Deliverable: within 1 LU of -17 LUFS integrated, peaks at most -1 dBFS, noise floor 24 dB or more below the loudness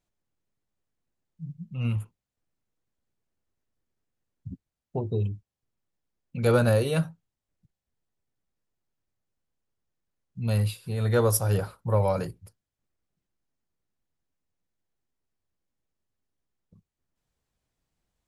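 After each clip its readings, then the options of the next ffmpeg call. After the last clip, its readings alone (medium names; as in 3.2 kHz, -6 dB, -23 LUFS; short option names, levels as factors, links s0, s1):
loudness -26.5 LUFS; peak level -9.5 dBFS; loudness target -17.0 LUFS
-> -af "volume=2.99,alimiter=limit=0.891:level=0:latency=1"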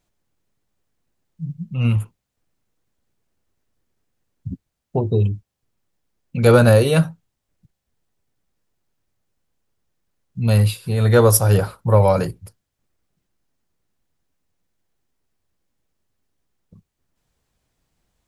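loudness -17.5 LUFS; peak level -1.0 dBFS; noise floor -79 dBFS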